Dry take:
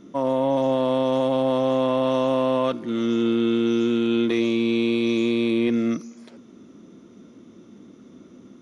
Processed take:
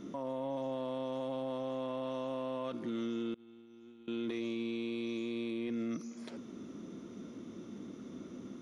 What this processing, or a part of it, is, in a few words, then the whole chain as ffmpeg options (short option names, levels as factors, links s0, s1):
stacked limiters: -filter_complex "[0:a]alimiter=limit=0.119:level=0:latency=1:release=457,alimiter=level_in=1.06:limit=0.0631:level=0:latency=1:release=35,volume=0.944,alimiter=level_in=2:limit=0.0631:level=0:latency=1:release=334,volume=0.501,asettb=1/sr,asplit=3[s0][s1][s2];[s0]atrim=end=3.344[s3];[s1]atrim=start=3.34:end=4.08,asetpts=PTS-STARTPTS,afade=t=in:d=0.004:c=qsin,afade=t=out:st=0.736:d=0.004:c=qsin,agate=range=0.0447:threshold=0.0224:ratio=16:detection=peak[s4];[s2]atrim=start=4.076[s5];[s3][s4]acrossfade=d=0.004:c1=hsin:c2=qsin[s6];[s6][s5]acrossfade=d=0.004:c1=qsin:c2=hsin"